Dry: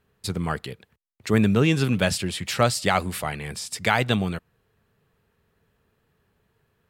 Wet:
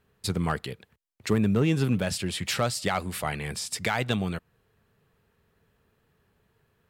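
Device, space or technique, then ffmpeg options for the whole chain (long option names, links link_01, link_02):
limiter into clipper: -filter_complex "[0:a]alimiter=limit=-11.5dB:level=0:latency=1:release=412,asoftclip=type=hard:threshold=-14dB,asettb=1/sr,asplit=3[link_01][link_02][link_03];[link_01]atrim=end=1.334[link_04];[link_02]atrim=start=1.33:end=2.07,asetpts=PTS-STARTPTS,afade=type=in:duration=0.004:curve=qsin,afade=type=out:start_time=0.736:duration=0.004:curve=qsin,equalizer=frequency=3900:width=0.31:gain=-5.5[link_05];[link_03]atrim=start=2.066[link_06];[link_04][link_05]acrossfade=duration=0.004:curve1=hsin:curve2=qsin[link_07];[link_07][link_06]acrossfade=duration=0.004:curve1=qsin:curve2=hsin"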